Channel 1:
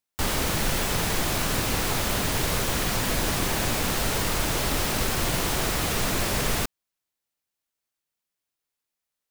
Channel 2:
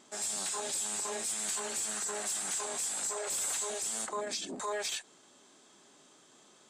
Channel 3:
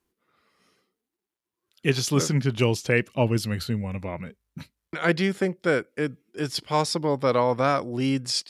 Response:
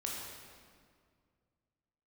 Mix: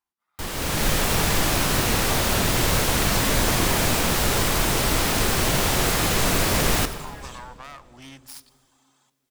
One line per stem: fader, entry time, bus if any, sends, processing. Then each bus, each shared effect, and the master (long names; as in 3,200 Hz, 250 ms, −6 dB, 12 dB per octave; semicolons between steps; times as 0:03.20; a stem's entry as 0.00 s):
−9.0 dB, 0.20 s, no bus, send −7.5 dB, automatic gain control gain up to 14 dB; pitch modulation by a square or saw wave saw up 4.2 Hz, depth 160 cents
−5.0 dB, 2.40 s, bus A, send −12 dB, reverb reduction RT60 0.64 s
−10.5 dB, 0.00 s, bus A, send −21.5 dB, phase distortion by the signal itself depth 0.52 ms
bus A: 0.0 dB, low shelf with overshoot 600 Hz −10.5 dB, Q 3; downward compressor, threshold −38 dBFS, peak gain reduction 11 dB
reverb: on, RT60 2.0 s, pre-delay 15 ms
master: no processing